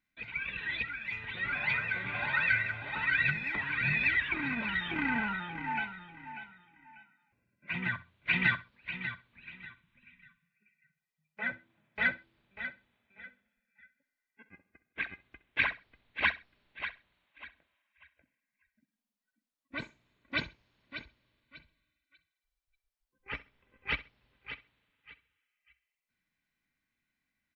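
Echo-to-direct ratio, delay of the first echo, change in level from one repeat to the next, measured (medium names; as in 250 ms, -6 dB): -18.0 dB, 65 ms, -13.0 dB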